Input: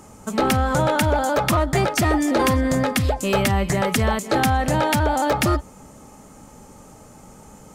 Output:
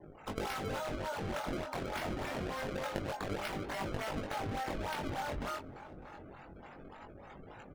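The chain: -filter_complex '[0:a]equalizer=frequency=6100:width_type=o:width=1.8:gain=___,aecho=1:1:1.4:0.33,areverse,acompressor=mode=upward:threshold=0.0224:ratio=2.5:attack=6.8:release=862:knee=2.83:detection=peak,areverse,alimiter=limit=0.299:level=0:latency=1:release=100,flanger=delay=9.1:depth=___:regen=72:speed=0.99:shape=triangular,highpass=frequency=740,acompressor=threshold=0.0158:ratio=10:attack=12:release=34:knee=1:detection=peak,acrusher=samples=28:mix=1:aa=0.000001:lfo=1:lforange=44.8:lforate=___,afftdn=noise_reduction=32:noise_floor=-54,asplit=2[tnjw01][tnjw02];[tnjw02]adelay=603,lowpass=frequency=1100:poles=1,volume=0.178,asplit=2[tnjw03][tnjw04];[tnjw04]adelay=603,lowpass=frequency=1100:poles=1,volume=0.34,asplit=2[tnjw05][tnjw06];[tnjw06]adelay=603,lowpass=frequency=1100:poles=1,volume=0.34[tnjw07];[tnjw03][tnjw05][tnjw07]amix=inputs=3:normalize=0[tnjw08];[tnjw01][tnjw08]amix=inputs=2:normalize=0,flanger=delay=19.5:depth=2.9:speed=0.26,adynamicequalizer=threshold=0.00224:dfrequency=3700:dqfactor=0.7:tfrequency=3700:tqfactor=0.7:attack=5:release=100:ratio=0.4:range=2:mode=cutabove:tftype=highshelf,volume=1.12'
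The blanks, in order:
7, 4.4, 3.4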